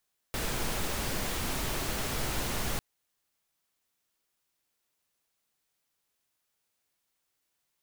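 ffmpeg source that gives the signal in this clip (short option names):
-f lavfi -i "anoisesrc=c=pink:a=0.129:d=2.45:r=44100:seed=1"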